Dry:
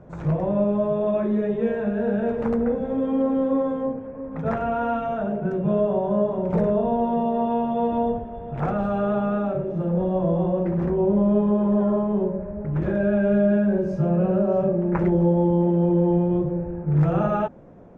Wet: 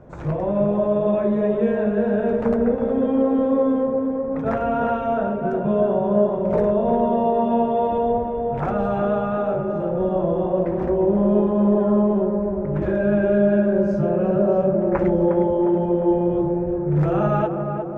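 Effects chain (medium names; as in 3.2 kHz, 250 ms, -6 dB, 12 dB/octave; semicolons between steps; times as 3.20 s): peaking EQ 170 Hz -9.5 dB 0.24 oct; on a send: tape echo 356 ms, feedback 72%, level -4 dB, low-pass 1.1 kHz; on the sum: trim +2 dB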